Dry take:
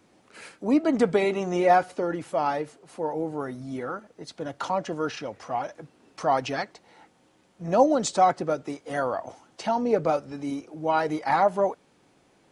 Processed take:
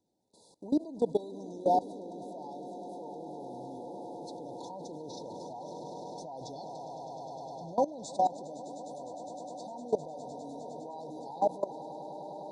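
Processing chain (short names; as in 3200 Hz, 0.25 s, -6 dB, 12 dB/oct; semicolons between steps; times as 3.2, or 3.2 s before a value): swelling echo 0.102 s, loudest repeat 8, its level -14.5 dB; FFT band-reject 1000–3400 Hz; level quantiser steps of 19 dB; gain -4.5 dB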